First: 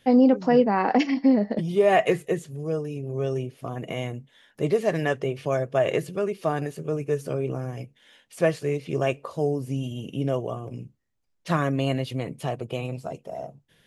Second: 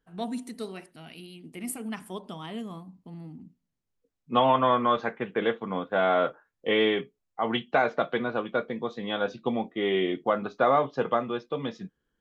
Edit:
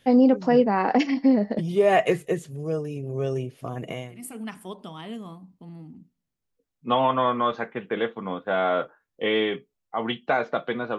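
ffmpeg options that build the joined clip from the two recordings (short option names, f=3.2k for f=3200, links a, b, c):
-filter_complex "[0:a]apad=whole_dur=10.98,atrim=end=10.98,atrim=end=4.35,asetpts=PTS-STARTPTS[a];[1:a]atrim=start=1.34:end=8.43,asetpts=PTS-STARTPTS[b];[a][b]acrossfade=d=0.46:c1=qua:c2=qua"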